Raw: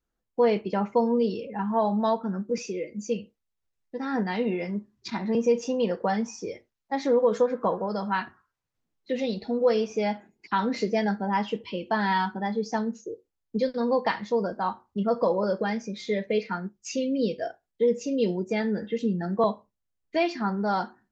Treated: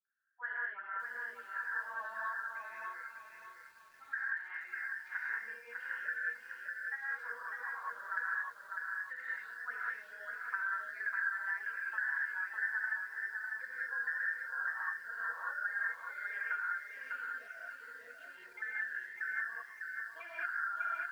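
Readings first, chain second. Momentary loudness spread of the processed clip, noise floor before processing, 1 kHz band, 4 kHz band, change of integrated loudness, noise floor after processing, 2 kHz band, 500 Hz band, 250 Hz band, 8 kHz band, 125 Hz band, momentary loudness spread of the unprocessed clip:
9 LU, -82 dBFS, -13.5 dB, under -20 dB, -11.0 dB, -56 dBFS, +3.5 dB, -35.0 dB, under -40 dB, no reading, under -40 dB, 10 LU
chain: random holes in the spectrogram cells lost 37%; Butterworth band-pass 1.6 kHz, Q 5.8; on a send: multi-head delay 319 ms, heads second and third, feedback 45%, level -23 dB; on the sum: gated-style reverb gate 230 ms rising, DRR -6.5 dB; compression 8:1, threshold -42 dBFS, peak gain reduction 16.5 dB; bit-crushed delay 601 ms, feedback 35%, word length 12-bit, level -4 dB; trim +8 dB

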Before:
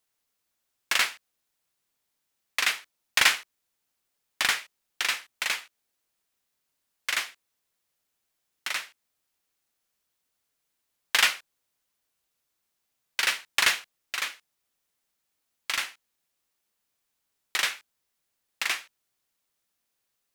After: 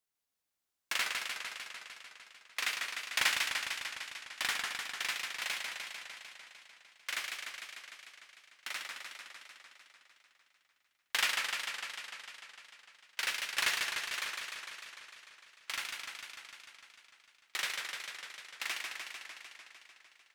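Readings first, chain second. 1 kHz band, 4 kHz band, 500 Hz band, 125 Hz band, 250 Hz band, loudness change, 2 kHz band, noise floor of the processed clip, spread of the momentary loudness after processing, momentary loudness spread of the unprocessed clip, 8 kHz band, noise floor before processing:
-6.5 dB, -6.5 dB, -6.5 dB, no reading, -6.5 dB, -9.0 dB, -6.5 dB, -80 dBFS, 21 LU, 14 LU, -7.0 dB, -80 dBFS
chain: flange 1.1 Hz, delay 8.9 ms, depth 4.1 ms, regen -79%; modulated delay 150 ms, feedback 75%, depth 149 cents, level -4 dB; trim -5 dB

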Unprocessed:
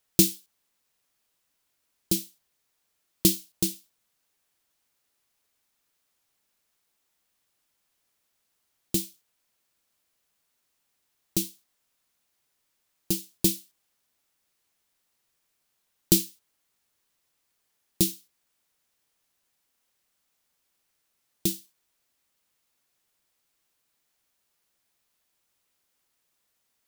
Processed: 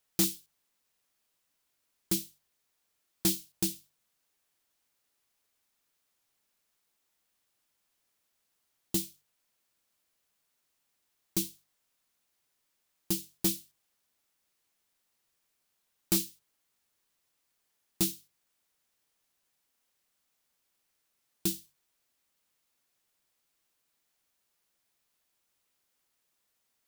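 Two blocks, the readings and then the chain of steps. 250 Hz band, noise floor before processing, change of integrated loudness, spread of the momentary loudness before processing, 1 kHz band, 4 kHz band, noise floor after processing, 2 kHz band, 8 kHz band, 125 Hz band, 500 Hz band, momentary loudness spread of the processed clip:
-6.0 dB, -76 dBFS, -5.5 dB, 17 LU, +2.0 dB, -5.0 dB, -79 dBFS, -2.0 dB, -5.0 dB, -7.0 dB, -6.5 dB, 13 LU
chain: overload inside the chain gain 18.5 dB; hum notches 50/100/150 Hz; trim -2.5 dB

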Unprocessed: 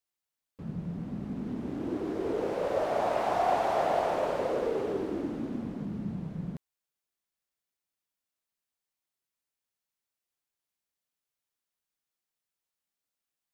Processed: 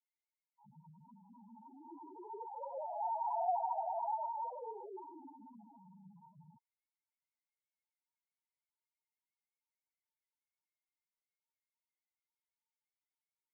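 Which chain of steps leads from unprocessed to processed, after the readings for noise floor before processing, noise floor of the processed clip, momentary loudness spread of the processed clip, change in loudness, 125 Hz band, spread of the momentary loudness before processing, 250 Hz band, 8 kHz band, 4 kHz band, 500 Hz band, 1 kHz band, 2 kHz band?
under -85 dBFS, under -85 dBFS, 22 LU, -8.0 dB, -25.5 dB, 10 LU, -23.5 dB, no reading, under -35 dB, -16.0 dB, -6.0 dB, under -40 dB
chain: frequency shift -16 Hz; two resonant band-passes 1.4 kHz, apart 1.2 oct; loudest bins only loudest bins 2; trim +8.5 dB

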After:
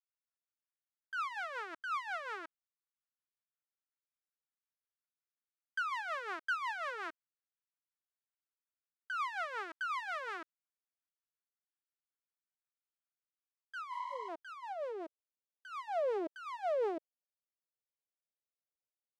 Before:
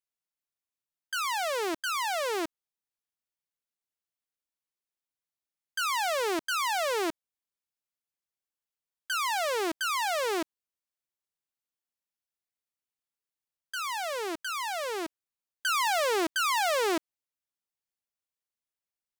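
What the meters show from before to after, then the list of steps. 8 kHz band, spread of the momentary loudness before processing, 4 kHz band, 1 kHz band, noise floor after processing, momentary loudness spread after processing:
-26.5 dB, 8 LU, -19.0 dB, -9.0 dB, under -85 dBFS, 11 LU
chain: rotary cabinet horn 5.5 Hz; spectral replace 13.95–14.26 s, 560–8300 Hz before; band-pass sweep 1.4 kHz -> 560 Hz, 13.05–15.04 s

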